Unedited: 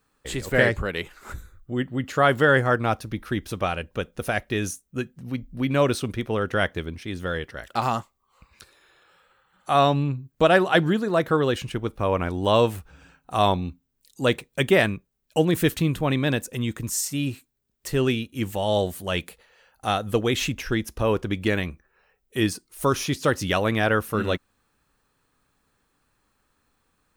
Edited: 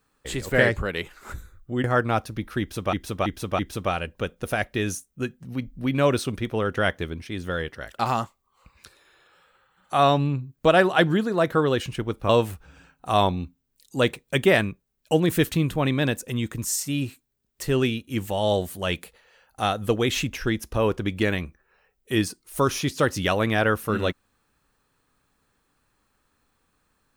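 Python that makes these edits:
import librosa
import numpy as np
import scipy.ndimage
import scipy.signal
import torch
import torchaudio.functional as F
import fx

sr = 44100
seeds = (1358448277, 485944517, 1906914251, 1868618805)

y = fx.edit(x, sr, fx.cut(start_s=1.84, length_s=0.75),
    fx.repeat(start_s=3.35, length_s=0.33, count=4),
    fx.cut(start_s=12.05, length_s=0.49), tone=tone)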